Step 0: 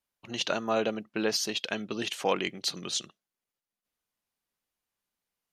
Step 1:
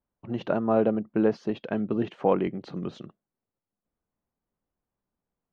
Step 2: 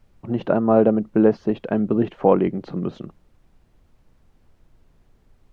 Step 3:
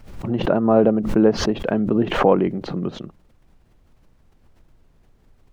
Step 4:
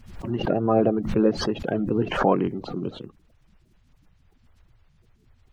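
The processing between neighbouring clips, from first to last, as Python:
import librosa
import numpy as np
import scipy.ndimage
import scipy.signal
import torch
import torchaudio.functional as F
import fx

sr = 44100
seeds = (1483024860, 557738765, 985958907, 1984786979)

y1 = scipy.signal.sosfilt(scipy.signal.butter(2, 1100.0, 'lowpass', fs=sr, output='sos'), x)
y1 = fx.low_shelf(y1, sr, hz=370.0, db=9.0)
y1 = F.gain(torch.from_numpy(y1), 2.5).numpy()
y2 = fx.high_shelf(y1, sr, hz=2000.0, db=-10.0)
y2 = fx.dmg_noise_colour(y2, sr, seeds[0], colour='brown', level_db=-62.0)
y2 = F.gain(torch.from_numpy(y2), 7.5).numpy()
y3 = fx.pre_swell(y2, sr, db_per_s=74.0)
y4 = fx.spec_quant(y3, sr, step_db=30)
y4 = F.gain(torch.from_numpy(y4), -4.0).numpy()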